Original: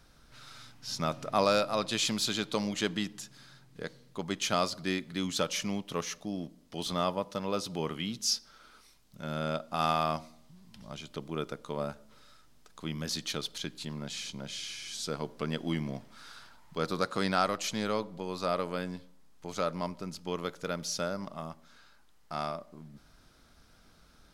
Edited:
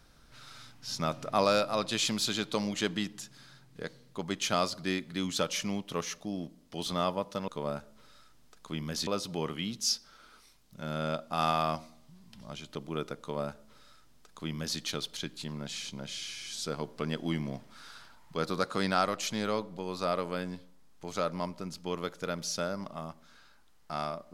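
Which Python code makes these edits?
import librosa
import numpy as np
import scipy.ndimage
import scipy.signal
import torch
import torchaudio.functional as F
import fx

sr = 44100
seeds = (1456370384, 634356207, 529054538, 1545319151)

y = fx.edit(x, sr, fx.duplicate(start_s=11.61, length_s=1.59, to_s=7.48), tone=tone)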